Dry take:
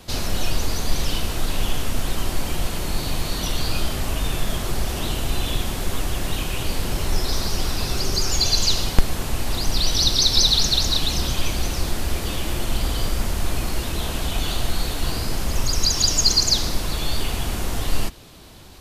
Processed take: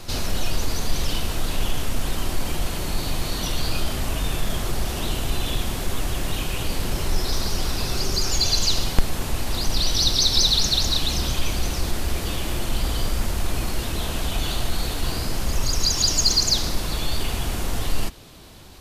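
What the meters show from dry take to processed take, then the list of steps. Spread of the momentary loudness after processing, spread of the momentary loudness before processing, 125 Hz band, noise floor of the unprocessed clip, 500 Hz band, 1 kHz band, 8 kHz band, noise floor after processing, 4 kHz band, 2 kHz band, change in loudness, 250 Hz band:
10 LU, 10 LU, -1.0 dB, -29 dBFS, -1.0 dB, -1.0 dB, -1.0 dB, -29 dBFS, -1.5 dB, -1.0 dB, -1.0 dB, -1.0 dB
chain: reverse echo 202 ms -14.5 dB; in parallel at -8 dB: saturation -15.5 dBFS, distortion -13 dB; on the sum: trim -3.5 dB

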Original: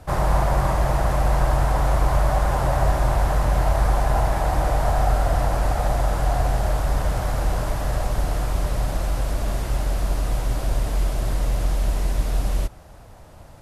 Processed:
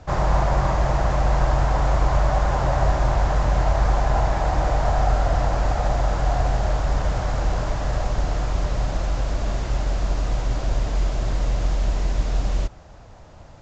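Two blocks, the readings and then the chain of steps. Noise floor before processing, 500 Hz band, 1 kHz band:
-43 dBFS, 0.0 dB, 0.0 dB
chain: A-law 128 kbps 16 kHz

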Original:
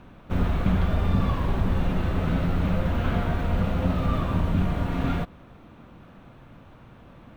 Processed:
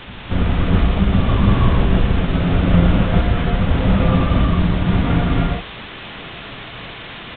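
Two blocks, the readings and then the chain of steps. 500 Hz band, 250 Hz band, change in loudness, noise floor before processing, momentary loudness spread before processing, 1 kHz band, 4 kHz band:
+8.5 dB, +9.0 dB, +8.5 dB, -50 dBFS, 3 LU, +7.5 dB, +13.5 dB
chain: trance gate "xxxxxxxx.x..x.x" 187 bpm; in parallel at -11 dB: sample-and-hold 30×; on the sum: added noise white -35 dBFS; on a send: reverse echo 1051 ms -21 dB; on the sum: gated-style reverb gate 380 ms rising, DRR -2.5 dB; resampled via 8 kHz; trim +4 dB

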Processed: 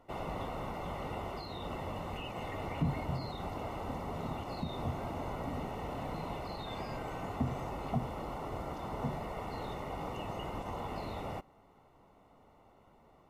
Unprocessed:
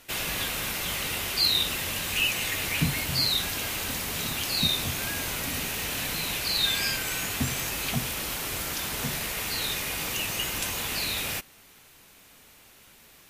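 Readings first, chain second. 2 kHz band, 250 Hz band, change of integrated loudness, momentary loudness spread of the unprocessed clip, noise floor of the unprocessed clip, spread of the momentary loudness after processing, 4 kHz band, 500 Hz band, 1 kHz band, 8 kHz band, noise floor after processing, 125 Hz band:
-18.5 dB, -3.0 dB, -12.5 dB, 6 LU, -54 dBFS, 4 LU, -24.5 dB, -0.5 dB, -1.0 dB, -30.5 dB, -63 dBFS, -3.5 dB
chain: peaking EQ 760 Hz +5 dB 0.85 oct; peak limiter -17.5 dBFS, peak gain reduction 6.5 dB; Savitzky-Golay filter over 65 samples; trim -2.5 dB

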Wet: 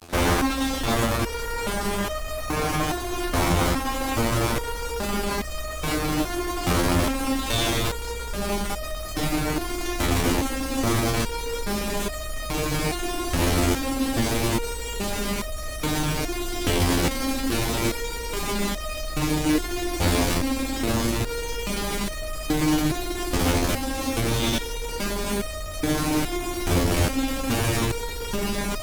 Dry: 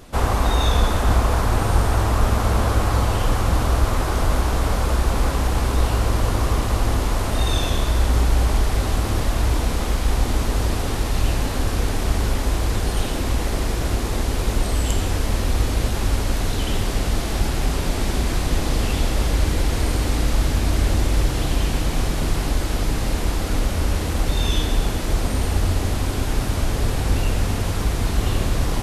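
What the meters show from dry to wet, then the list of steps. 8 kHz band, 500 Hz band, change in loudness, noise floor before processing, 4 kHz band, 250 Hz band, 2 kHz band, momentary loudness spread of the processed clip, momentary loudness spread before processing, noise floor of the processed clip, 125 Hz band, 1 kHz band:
+0.5 dB, 0.0 dB, -3.0 dB, -24 dBFS, 0.0 dB, +2.0 dB, +0.5 dB, 7 LU, 4 LU, -32 dBFS, -7.0 dB, -1.5 dB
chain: small resonant body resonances 290/2300 Hz, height 8 dB, ringing for 30 ms; fuzz box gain 32 dB, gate -37 dBFS; resonator arpeggio 2.4 Hz 87–620 Hz; trim +4.5 dB

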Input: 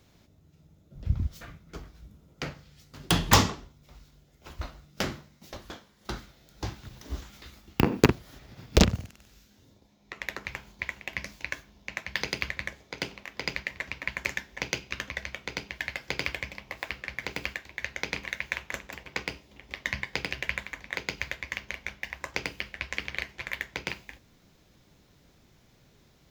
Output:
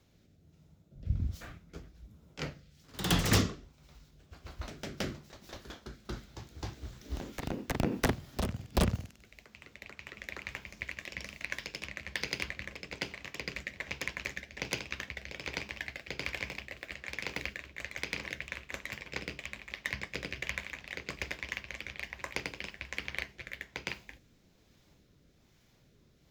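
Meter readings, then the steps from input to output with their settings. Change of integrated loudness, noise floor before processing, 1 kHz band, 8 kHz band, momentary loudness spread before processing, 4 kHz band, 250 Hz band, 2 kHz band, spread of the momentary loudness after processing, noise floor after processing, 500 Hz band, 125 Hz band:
-5.5 dB, -62 dBFS, -8.0 dB, -5.5 dB, 20 LU, -5.5 dB, -5.5 dB, -5.0 dB, 16 LU, -65 dBFS, -6.5 dB, -4.5 dB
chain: rotary cabinet horn 1.2 Hz; wavefolder -15.5 dBFS; ever faster or slower copies 111 ms, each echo +1 st, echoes 2, each echo -6 dB; trim -3 dB

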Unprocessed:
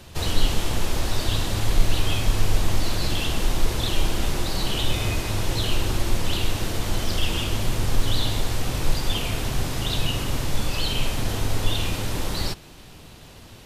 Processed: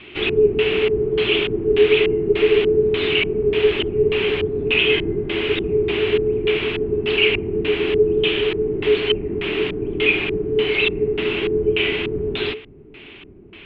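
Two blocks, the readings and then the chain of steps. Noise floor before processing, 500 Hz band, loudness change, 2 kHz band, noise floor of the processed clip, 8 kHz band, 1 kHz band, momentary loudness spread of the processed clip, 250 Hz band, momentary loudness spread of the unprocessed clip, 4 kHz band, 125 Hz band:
-45 dBFS, +17.5 dB, +7.5 dB, +11.0 dB, -42 dBFS, under -30 dB, -3.5 dB, 6 LU, +6.5 dB, 3 LU, +4.0 dB, -4.5 dB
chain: LFO low-pass square 1.7 Hz 570–3700 Hz; resonant high shelf 4.4 kHz -13 dB, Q 3; frequency shift -440 Hz

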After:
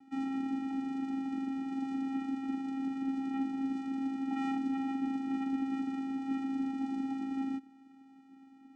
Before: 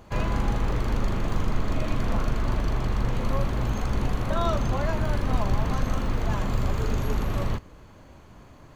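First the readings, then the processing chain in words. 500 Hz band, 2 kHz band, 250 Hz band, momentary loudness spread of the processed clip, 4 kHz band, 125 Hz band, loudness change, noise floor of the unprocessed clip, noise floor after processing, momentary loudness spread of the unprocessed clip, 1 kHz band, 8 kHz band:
-23.0 dB, -12.5 dB, +0.5 dB, 3 LU, -15.0 dB, under -30 dB, -7.0 dB, -49 dBFS, -58 dBFS, 2 LU, -9.5 dB, no reading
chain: vocoder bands 4, square 269 Hz; trim -4.5 dB

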